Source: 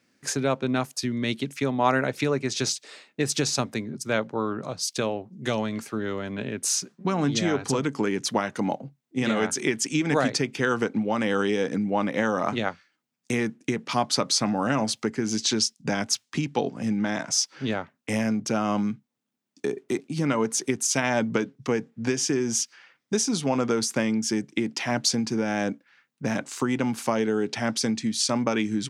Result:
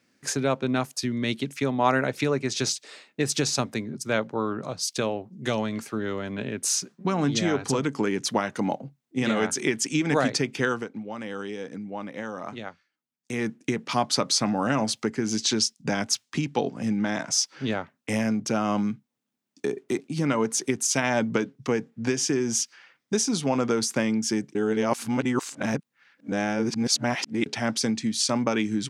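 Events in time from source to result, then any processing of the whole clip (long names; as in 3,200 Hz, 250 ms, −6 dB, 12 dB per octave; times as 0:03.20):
0:10.64–0:13.48: duck −10 dB, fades 0.22 s
0:24.55–0:27.46: reverse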